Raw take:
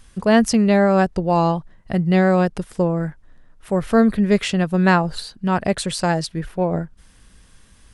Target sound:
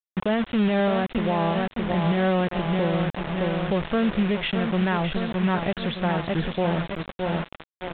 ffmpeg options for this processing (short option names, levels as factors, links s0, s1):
-filter_complex "[0:a]aecho=1:1:615|1230|1845|2460|3075:0.398|0.187|0.0879|0.0413|0.0194,alimiter=limit=0.178:level=0:latency=1:release=148,asettb=1/sr,asplit=3[s0][s1][s2];[s0]atrim=end=2.944[s3];[s1]atrim=start=2.94:end=3.74,asetpts=PTS-STARTPTS,afade=t=in:d=0.004:c=qsin,afade=t=out:st=0.796:d=0.004:c=qsin,equalizer=f=60:t=o:w=1.1:g=9.5[s4];[s2]atrim=start=3.736[s5];[s3][s4]acrossfade=d=0.004:c1=hsin:c2=qsin[s6];[s6][s5]acrossfade=d=0.004:c1=qsin:c2=hsin,acrusher=bits=4:mix=0:aa=0.000001,aresample=8000,aresample=44100"